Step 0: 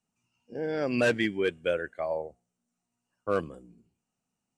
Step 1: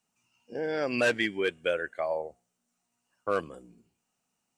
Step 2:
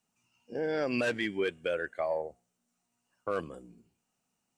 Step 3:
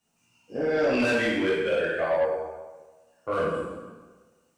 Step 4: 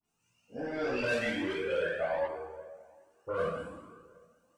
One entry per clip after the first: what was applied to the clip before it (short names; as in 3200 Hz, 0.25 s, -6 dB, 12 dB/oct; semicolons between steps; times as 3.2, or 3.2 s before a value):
low shelf 360 Hz -10 dB; in parallel at +1 dB: compressor, threshold -38 dBFS, peak gain reduction 15 dB
in parallel at -10 dB: soft clip -24 dBFS, distortion -12 dB; on the sum: limiter -18 dBFS, peak gain reduction 5 dB; low shelf 420 Hz +3.5 dB; gain -4 dB
plate-style reverb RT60 1.3 s, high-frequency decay 0.8×, DRR -8.5 dB; soft clip -17.5 dBFS, distortion -15 dB
dispersion highs, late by 44 ms, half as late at 1900 Hz; tape echo 0.381 s, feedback 43%, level -20 dB, low-pass 2200 Hz; cascading flanger rising 1.3 Hz; gain -2.5 dB